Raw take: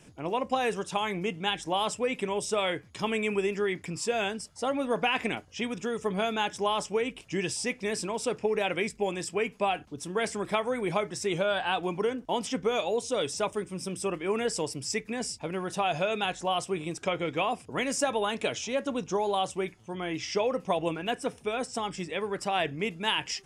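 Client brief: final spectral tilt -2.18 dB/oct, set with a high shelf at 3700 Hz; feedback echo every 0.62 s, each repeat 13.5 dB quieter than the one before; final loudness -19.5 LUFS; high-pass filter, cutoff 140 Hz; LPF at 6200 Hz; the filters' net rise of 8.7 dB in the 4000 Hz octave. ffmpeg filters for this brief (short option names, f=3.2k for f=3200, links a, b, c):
-af "highpass=140,lowpass=6.2k,highshelf=f=3.7k:g=7,equalizer=f=4k:t=o:g=8.5,aecho=1:1:620|1240:0.211|0.0444,volume=7.5dB"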